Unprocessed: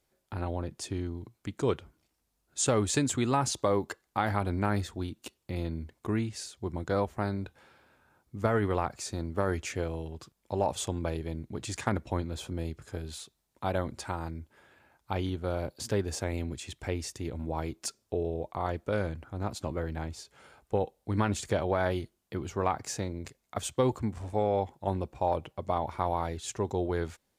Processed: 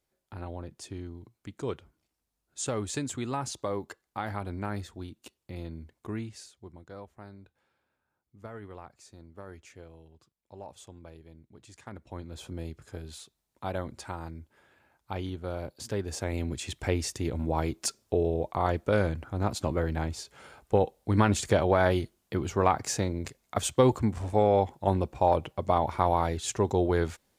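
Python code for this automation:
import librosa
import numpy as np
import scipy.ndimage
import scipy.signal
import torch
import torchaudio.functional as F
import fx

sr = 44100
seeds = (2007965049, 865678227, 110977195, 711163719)

y = fx.gain(x, sr, db=fx.line((6.32, -5.5), (6.86, -16.0), (11.83, -16.0), (12.46, -3.0), (15.95, -3.0), (16.67, 5.0)))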